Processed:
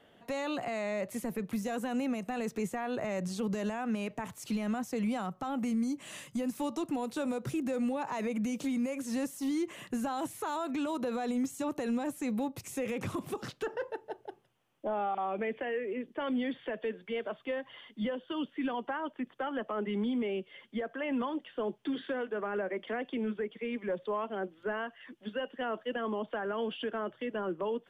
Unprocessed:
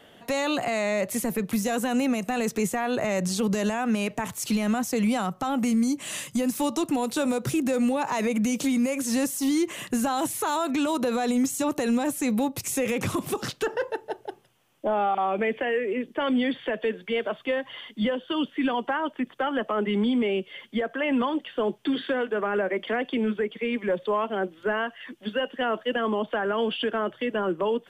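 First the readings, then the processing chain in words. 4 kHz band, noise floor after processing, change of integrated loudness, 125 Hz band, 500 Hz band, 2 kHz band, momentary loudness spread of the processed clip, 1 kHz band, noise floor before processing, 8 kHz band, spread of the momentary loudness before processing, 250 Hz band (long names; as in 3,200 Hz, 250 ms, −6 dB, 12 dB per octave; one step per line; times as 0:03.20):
−11.5 dB, −62 dBFS, −8.5 dB, −8.0 dB, −8.0 dB, −9.5 dB, 5 LU, −8.5 dB, −53 dBFS, −14.5 dB, 5 LU, −8.0 dB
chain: high-shelf EQ 3,400 Hz −7.5 dB
level −8 dB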